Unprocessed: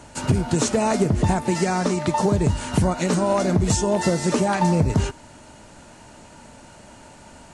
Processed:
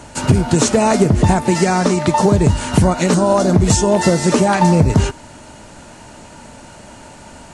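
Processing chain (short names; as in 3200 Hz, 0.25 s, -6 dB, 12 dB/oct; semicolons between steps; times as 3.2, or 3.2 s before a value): 3.14–3.54 bell 2200 Hz -10.5 dB 0.61 oct; gain +7 dB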